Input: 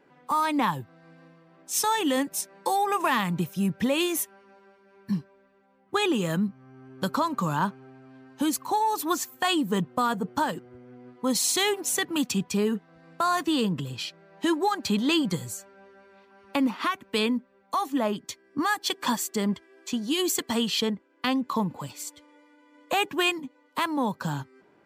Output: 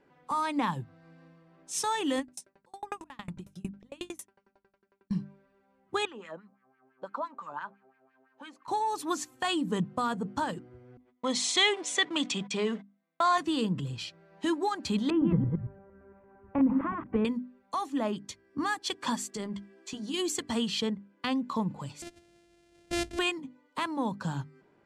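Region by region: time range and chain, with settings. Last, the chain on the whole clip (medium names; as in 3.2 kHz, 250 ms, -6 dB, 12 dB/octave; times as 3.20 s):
2.19–5.11 s: slow attack 251 ms + sawtooth tremolo in dB decaying 11 Hz, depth 37 dB
6.05–8.68 s: high-pass 190 Hz + wah-wah 5.9 Hz 560–2100 Hz, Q 2.4
10.97–13.38 s: companding laws mixed up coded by mu + gate -40 dBFS, range -34 dB + cabinet simulation 250–8400 Hz, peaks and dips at 640 Hz +6 dB, 1.1 kHz +5 dB, 2.1 kHz +9 dB, 3.4 kHz +9 dB
15.10–17.25 s: chunks repeated in reverse 114 ms, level -4 dB + Bessel low-pass 1.2 kHz, order 6 + bass shelf 190 Hz +11.5 dB
19.28–20.14 s: band-stop 230 Hz, Q 7.5 + compression 4:1, threshold -28 dBFS + doubling 15 ms -11 dB
22.02–23.19 s: sorted samples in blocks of 128 samples + peaking EQ 1.1 kHz -15 dB 0.59 oct
whole clip: low-pass 10 kHz 24 dB/octave; bass shelf 130 Hz +11 dB; hum notches 50/100/150/200/250/300 Hz; trim -5.5 dB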